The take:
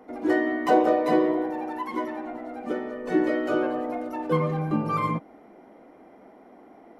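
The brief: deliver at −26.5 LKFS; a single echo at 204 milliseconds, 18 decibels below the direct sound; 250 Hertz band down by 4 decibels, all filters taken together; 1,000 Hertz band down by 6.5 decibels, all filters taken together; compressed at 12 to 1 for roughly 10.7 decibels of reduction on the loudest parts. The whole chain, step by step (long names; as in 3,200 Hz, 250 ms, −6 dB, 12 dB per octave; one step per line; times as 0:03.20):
parametric band 250 Hz −5 dB
parametric band 1,000 Hz −9 dB
downward compressor 12 to 1, threshold −30 dBFS
single-tap delay 204 ms −18 dB
level +9 dB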